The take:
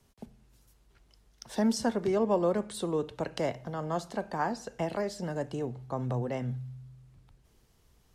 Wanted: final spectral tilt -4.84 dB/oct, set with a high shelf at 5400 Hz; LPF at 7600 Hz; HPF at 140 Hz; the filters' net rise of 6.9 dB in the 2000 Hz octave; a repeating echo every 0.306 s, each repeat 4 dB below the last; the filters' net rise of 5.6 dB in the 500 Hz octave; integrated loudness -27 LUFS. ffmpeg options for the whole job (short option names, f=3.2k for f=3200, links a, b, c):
-af "highpass=140,lowpass=7.6k,equalizer=f=500:t=o:g=6.5,equalizer=f=2k:t=o:g=8,highshelf=f=5.4k:g=4,aecho=1:1:306|612|918|1224|1530|1836|2142|2448|2754:0.631|0.398|0.25|0.158|0.0994|0.0626|0.0394|0.0249|0.0157,volume=-0.5dB"